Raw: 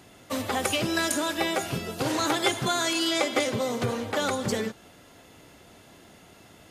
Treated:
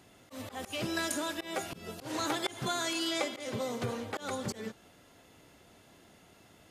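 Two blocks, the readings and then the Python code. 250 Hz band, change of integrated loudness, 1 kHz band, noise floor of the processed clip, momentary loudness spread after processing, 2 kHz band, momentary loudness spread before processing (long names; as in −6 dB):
−8.0 dB, −8.5 dB, −8.5 dB, −60 dBFS, 12 LU, −9.0 dB, 6 LU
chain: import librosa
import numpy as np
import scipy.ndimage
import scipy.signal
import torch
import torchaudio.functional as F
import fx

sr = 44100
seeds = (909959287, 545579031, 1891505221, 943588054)

y = fx.auto_swell(x, sr, attack_ms=157.0)
y = y * 10.0 ** (-7.0 / 20.0)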